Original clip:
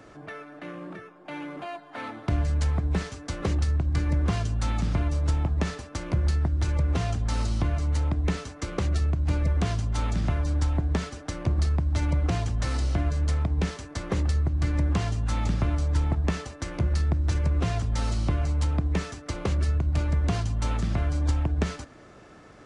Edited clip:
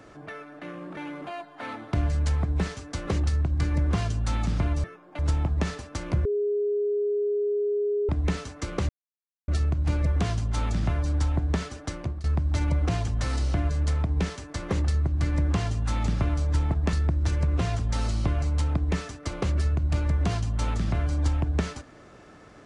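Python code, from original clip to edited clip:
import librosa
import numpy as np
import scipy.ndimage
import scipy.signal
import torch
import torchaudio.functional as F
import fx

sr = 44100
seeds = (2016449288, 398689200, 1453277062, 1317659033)

y = fx.edit(x, sr, fx.move(start_s=0.97, length_s=0.35, to_s=5.19),
    fx.bleep(start_s=6.25, length_s=1.84, hz=412.0, db=-22.5),
    fx.insert_silence(at_s=8.89, length_s=0.59),
    fx.fade_out_to(start_s=11.31, length_s=0.34, floor_db=-20.0),
    fx.cut(start_s=16.34, length_s=0.62), tone=tone)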